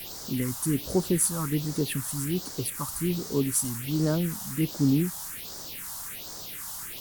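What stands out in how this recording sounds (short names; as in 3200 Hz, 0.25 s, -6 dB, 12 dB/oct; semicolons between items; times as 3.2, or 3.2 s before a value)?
a quantiser's noise floor 6-bit, dither triangular; phasing stages 4, 1.3 Hz, lowest notch 390–2700 Hz; SBC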